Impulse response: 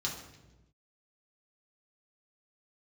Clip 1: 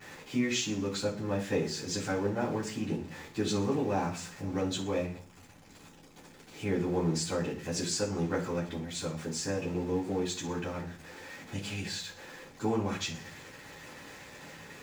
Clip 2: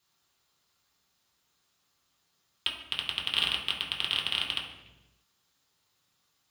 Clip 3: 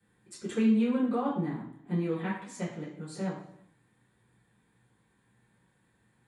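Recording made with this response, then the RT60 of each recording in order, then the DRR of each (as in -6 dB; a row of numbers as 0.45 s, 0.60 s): 2; 0.45 s, 1.1 s, 0.75 s; -10.0 dB, -4.0 dB, -11.0 dB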